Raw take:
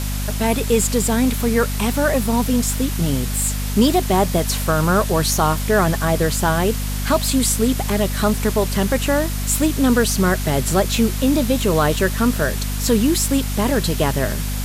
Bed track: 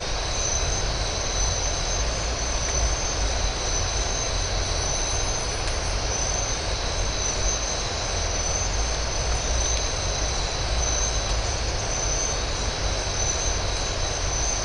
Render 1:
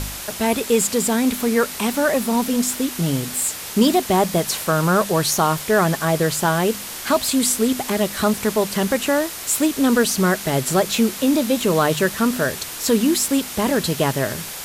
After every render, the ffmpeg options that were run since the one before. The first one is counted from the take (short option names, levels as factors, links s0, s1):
-af "bandreject=f=50:t=h:w=4,bandreject=f=100:t=h:w=4,bandreject=f=150:t=h:w=4,bandreject=f=200:t=h:w=4,bandreject=f=250:t=h:w=4"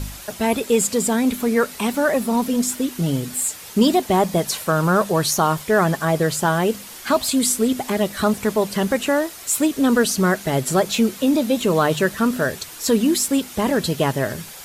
-af "afftdn=nr=8:nf=-32"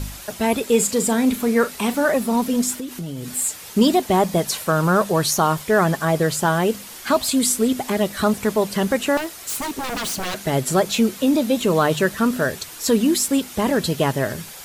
-filter_complex "[0:a]asettb=1/sr,asplit=3[s0][s1][s2];[s0]atrim=end=0.704[s3];[s1]atrim=start=0.7:end=2.12,asetpts=PTS-STARTPTS,afade=t=in:d=0.004:c=qsin,afade=t=out:st=1.416:d=0.004:c=qsin,asplit=2[s4][s5];[s5]adelay=39,volume=0.251[s6];[s4][s6]amix=inputs=2:normalize=0,atrim=end_sample=62622[s7];[s2]atrim=start=2.116[s8];[s3][s7]acrossfade=d=0.004:c1=hsin:c2=qsin[s9];[s9][s8]acrossfade=d=0.004:c1=qsin:c2=hsin,asettb=1/sr,asplit=3[s10][s11][s12];[s10]atrim=end=2.764[s13];[s11]atrim=start=2.76:end=3.28,asetpts=PTS-STARTPTS,afade=t=in:d=0.004:c=qsin,afade=t=out:st=0.516:d=0.004:c=qsin,acompressor=threshold=0.0501:ratio=6:attack=3.2:release=140:knee=1:detection=peak[s14];[s12]atrim=start=3.276[s15];[s13][s14]acrossfade=d=0.004:c1=hsin:c2=qsin[s16];[s16][s15]acrossfade=d=0.004:c1=qsin:c2=hsin,asettb=1/sr,asplit=3[s17][s18][s19];[s17]atrim=end=9.174[s20];[s18]atrim=start=9.17:end=10.46,asetpts=PTS-STARTPTS,afade=t=in:d=0.004:c=qsin,afade=t=out:st=1.286:d=0.004:c=qsin,aeval=exprs='0.0891*(abs(mod(val(0)/0.0891+3,4)-2)-1)':c=same[s21];[s19]atrim=start=10.456[s22];[s20][s21]acrossfade=d=0.004:c1=hsin:c2=qsin[s23];[s23][s22]acrossfade=d=0.004:c1=qsin:c2=hsin"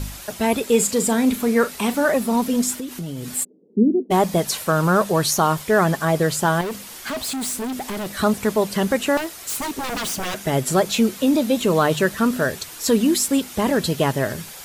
-filter_complex "[0:a]asplit=3[s0][s1][s2];[s0]afade=t=out:st=3.43:d=0.02[s3];[s1]asuperpass=centerf=290:order=8:qfactor=1.1,afade=t=in:st=3.43:d=0.02,afade=t=out:st=4.1:d=0.02[s4];[s2]afade=t=in:st=4.1:d=0.02[s5];[s3][s4][s5]amix=inputs=3:normalize=0,asettb=1/sr,asplit=3[s6][s7][s8];[s6]atrim=end=6.614[s9];[s7]atrim=start=6.61:end=8.08,asetpts=PTS-STARTPTS,afade=t=in:d=0.004:c=qsin,afade=t=out:st=1.466:d=0.004:c=qsin,volume=16.8,asoftclip=hard,volume=0.0596[s10];[s8]atrim=start=8.076[s11];[s9][s10]acrossfade=d=0.004:c1=hsin:c2=qsin[s12];[s12][s11]acrossfade=d=0.004:c1=qsin:c2=hsin,asettb=1/sr,asplit=3[s13][s14][s15];[s13]atrim=end=10.064[s16];[s14]atrim=start=10.06:end=10.65,asetpts=PTS-STARTPTS,afade=t=in:d=0.004:c=qsin,afade=t=out:st=0.586:d=0.004:c=qsin,bandreject=f=4200:w=9.6[s17];[s15]atrim=start=10.646[s18];[s16][s17]acrossfade=d=0.004:c1=hsin:c2=qsin[s19];[s19][s18]acrossfade=d=0.004:c1=qsin:c2=hsin"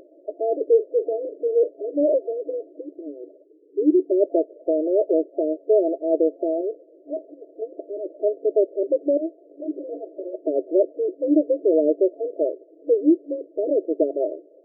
-af "aemphasis=mode=reproduction:type=bsi,afftfilt=real='re*between(b*sr/4096,280,680)':imag='im*between(b*sr/4096,280,680)':win_size=4096:overlap=0.75"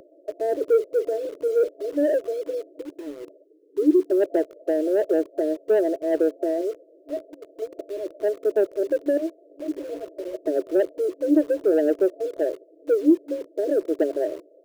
-filter_complex "[0:a]acrossover=split=320|370[s0][s1][s2];[s1]acrusher=bits=7:mix=0:aa=0.000001[s3];[s2]asoftclip=type=tanh:threshold=0.106[s4];[s0][s3][s4]amix=inputs=3:normalize=0"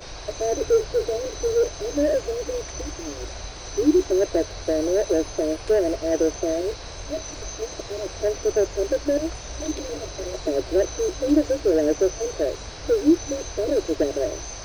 -filter_complex "[1:a]volume=0.299[s0];[0:a][s0]amix=inputs=2:normalize=0"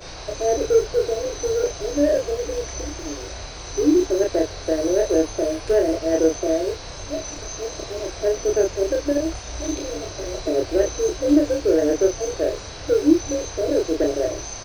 -filter_complex "[0:a]asplit=2[s0][s1];[s1]adelay=31,volume=0.75[s2];[s0][s2]amix=inputs=2:normalize=0"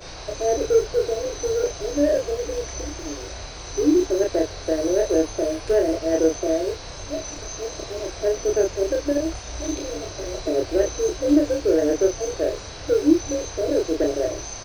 -af "volume=0.891"